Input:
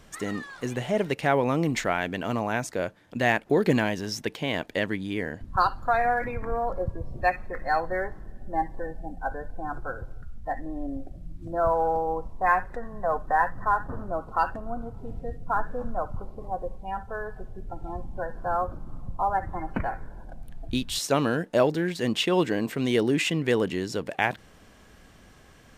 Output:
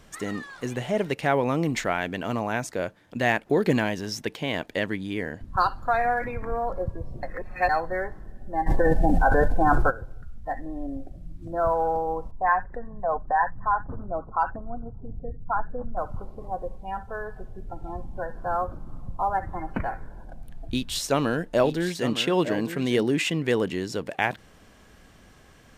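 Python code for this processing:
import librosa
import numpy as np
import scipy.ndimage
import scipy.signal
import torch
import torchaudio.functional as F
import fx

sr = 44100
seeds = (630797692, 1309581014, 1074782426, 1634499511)

y = fx.env_flatten(x, sr, amount_pct=100, at=(8.66, 9.89), fade=0.02)
y = fx.envelope_sharpen(y, sr, power=1.5, at=(12.31, 15.97))
y = fx.echo_single(y, sr, ms=908, db=-11.0, at=(20.0, 23.06))
y = fx.edit(y, sr, fx.reverse_span(start_s=7.23, length_s=0.46), tone=tone)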